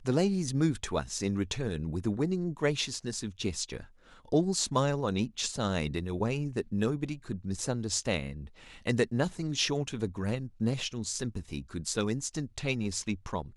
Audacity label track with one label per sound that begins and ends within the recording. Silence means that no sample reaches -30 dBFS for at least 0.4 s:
4.320000	8.300000	sound